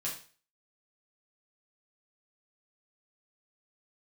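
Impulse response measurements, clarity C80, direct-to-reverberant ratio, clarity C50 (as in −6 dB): 11.5 dB, −6.0 dB, 6.5 dB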